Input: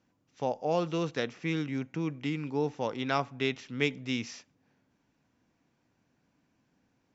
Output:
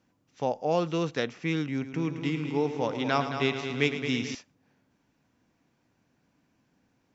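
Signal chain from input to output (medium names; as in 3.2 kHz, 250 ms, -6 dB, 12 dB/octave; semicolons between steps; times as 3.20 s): 1.72–4.35 s: multi-head delay 109 ms, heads first and second, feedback 57%, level -11 dB; trim +2.5 dB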